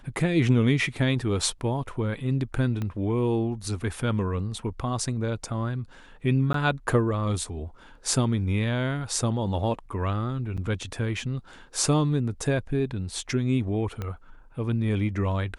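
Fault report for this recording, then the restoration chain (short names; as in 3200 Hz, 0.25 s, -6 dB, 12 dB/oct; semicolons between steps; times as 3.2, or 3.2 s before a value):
2.82 pop -19 dBFS
6.53–6.54 gap 13 ms
10.57–10.58 gap 6.4 ms
14.02 pop -19 dBFS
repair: de-click; interpolate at 6.53, 13 ms; interpolate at 10.57, 6.4 ms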